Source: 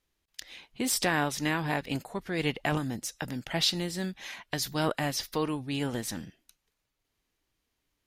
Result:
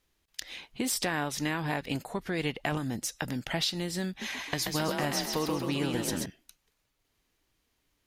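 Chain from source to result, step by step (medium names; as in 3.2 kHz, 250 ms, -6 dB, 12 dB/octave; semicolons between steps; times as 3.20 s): compression 2.5:1, threshold -35 dBFS, peak gain reduction 9 dB; 4.08–6.26 s: frequency-shifting echo 132 ms, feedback 51%, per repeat +34 Hz, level -4 dB; trim +4.5 dB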